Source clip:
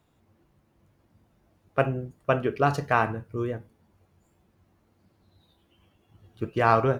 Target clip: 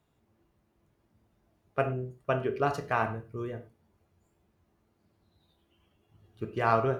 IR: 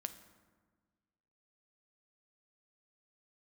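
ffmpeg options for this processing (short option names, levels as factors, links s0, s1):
-filter_complex "[1:a]atrim=start_sample=2205,afade=t=out:st=0.29:d=0.01,atrim=end_sample=13230,asetrate=88200,aresample=44100[s0];[0:a][s0]afir=irnorm=-1:irlink=0,volume=1.41"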